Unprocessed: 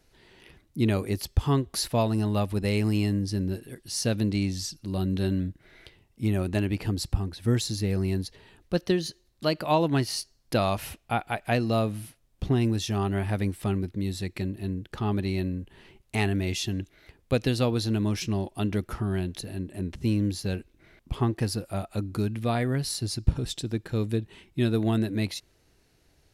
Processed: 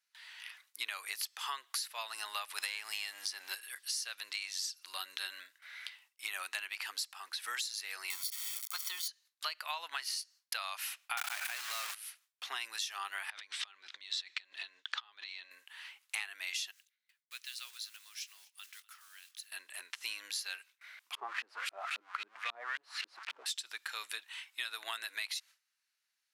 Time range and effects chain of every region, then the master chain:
2.58–3.55 s: waveshaping leveller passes 1 + three bands compressed up and down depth 100%
8.10–9.08 s: zero-crossing glitches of -28.5 dBFS + band-stop 2.4 kHz, Q 13 + comb 0.9 ms, depth 85%
11.17–11.95 s: block-companded coder 3-bit + level flattener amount 100%
13.30–15.51 s: low-pass 6.4 kHz 24 dB/octave + peaking EQ 3.5 kHz +7.5 dB 0.39 oct + compressor with a negative ratio -34 dBFS, ratio -0.5
16.71–19.52 s: block-companded coder 5-bit + amplifier tone stack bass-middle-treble 6-0-2 + delay 247 ms -23 dB
21.15–23.46 s: zero-crossing glitches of -22 dBFS + LFO low-pass saw up 3.7 Hz 220–3300 Hz
whole clip: high-pass 1.2 kHz 24 dB/octave; gate with hold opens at -57 dBFS; compression 12:1, threshold -42 dBFS; trim +7 dB

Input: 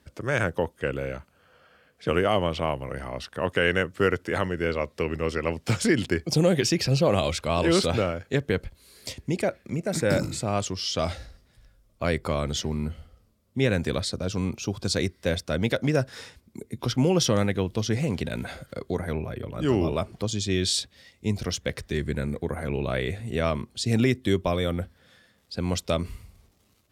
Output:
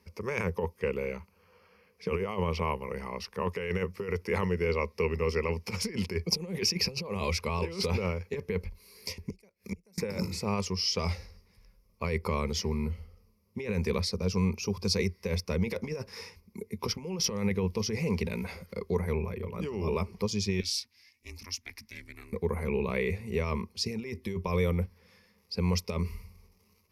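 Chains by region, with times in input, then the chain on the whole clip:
9.30–9.98 s: tone controls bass +1 dB, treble +13 dB + inverted gate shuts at -21 dBFS, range -34 dB
20.60–22.33 s: amplifier tone stack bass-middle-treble 10-0-10 + ring modulator 180 Hz
whole clip: compressor with a negative ratio -25 dBFS, ratio -0.5; rippled EQ curve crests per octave 0.84, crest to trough 14 dB; trim -6.5 dB

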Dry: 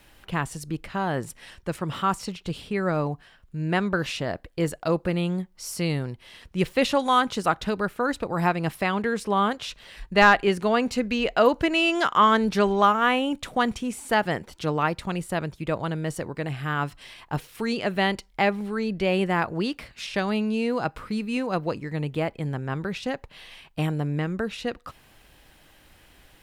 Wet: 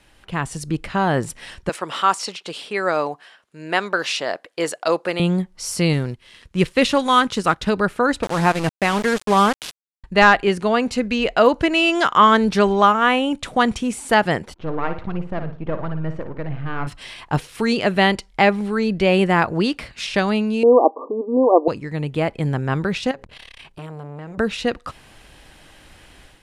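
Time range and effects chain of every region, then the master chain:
1.69–5.20 s: high-pass 460 Hz + dynamic bell 5 kHz, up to +4 dB, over -44 dBFS, Q 1.1
5.93–7.67 s: companding laws mixed up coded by A + peaking EQ 730 Hz -5.5 dB 0.72 oct
8.23–10.04 s: high-pass 61 Hz + small samples zeroed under -29 dBFS
14.54–16.87 s: partial rectifier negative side -12 dB + tape spacing loss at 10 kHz 44 dB + flutter echo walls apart 9.7 m, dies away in 0.37 s
20.63–21.68 s: brick-wall FIR band-pass 240–1200 Hz + peaking EQ 500 Hz +13 dB 2.5 oct
23.11–24.38 s: hum notches 60/120/180/240/300/360/420/480/540 Hz + compression 3:1, threshold -40 dBFS + transformer saturation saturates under 680 Hz
whole clip: low-pass 11 kHz 24 dB/octave; level rider gain up to 8 dB

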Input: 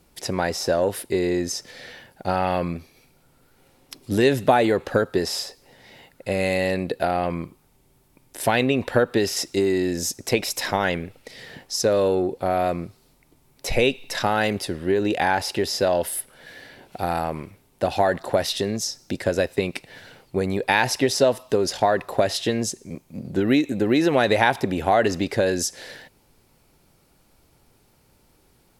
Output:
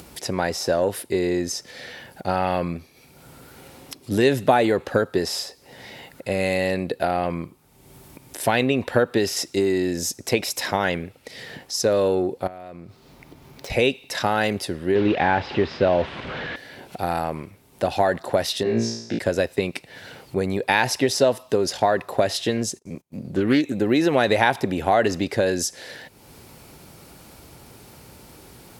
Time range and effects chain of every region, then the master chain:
12.47–13.70 s: median filter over 5 samples + compression 5:1, threshold -37 dBFS
14.95–16.56 s: one-bit delta coder 64 kbps, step -24.5 dBFS + low-pass 3.4 kHz 24 dB/octave + bass shelf 360 Hz +5.5 dB
18.63–19.19 s: band-pass 110–6100 Hz + treble shelf 4.7 kHz -11 dB + flutter echo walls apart 3 m, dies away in 0.69 s
22.57–23.73 s: gate -45 dBFS, range -25 dB + loudspeaker Doppler distortion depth 0.13 ms
whole clip: high-pass 57 Hz; upward compressor, threshold -32 dBFS

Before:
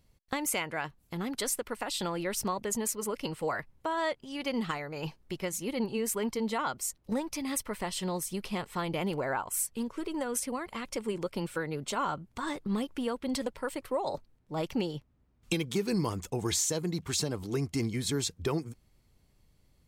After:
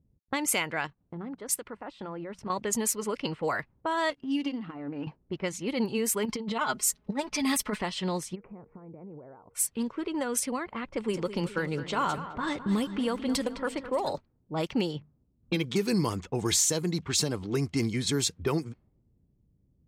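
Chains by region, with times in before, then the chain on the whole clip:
0.85–2.50 s: treble shelf 7.1 kHz +3 dB + hum notches 60/120/180 Hz + level held to a coarse grid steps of 10 dB
4.10–5.07 s: partial rectifier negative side -7 dB + compression 10:1, threshold -39 dBFS + small resonant body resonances 280/2800 Hz, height 16 dB, ringing for 90 ms
6.25–7.82 s: comb 4.7 ms, depth 74% + compressor with a negative ratio -31 dBFS, ratio -0.5
8.34–9.53 s: elliptic low-pass 2.4 kHz + compression 8:1, threshold -44 dBFS + whistle 470 Hz -63 dBFS
10.83–14.13 s: bass shelf 61 Hz +11 dB + bit-crushed delay 211 ms, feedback 55%, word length 10-bit, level -12 dB
14.97–15.64 s: peaking EQ 9.8 kHz -10 dB 1.3 oct + hum notches 50/100/150/200/250/300/350/400/450 Hz
whole clip: high-pass 110 Hz 6 dB/octave; level-controlled noise filter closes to 300 Hz, open at -28 dBFS; peaking EQ 640 Hz -3 dB 1.9 oct; trim +5 dB

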